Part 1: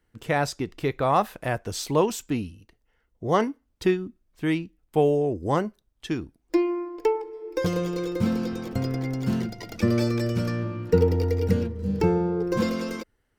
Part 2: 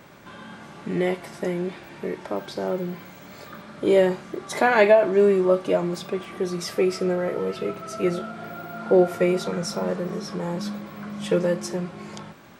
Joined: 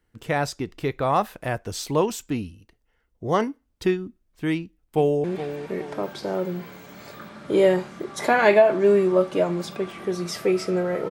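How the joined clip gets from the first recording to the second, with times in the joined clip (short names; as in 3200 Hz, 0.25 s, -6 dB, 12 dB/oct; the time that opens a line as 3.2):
part 1
4.55–5.24 echo throw 0.42 s, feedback 45%, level -11 dB
5.24 switch to part 2 from 1.57 s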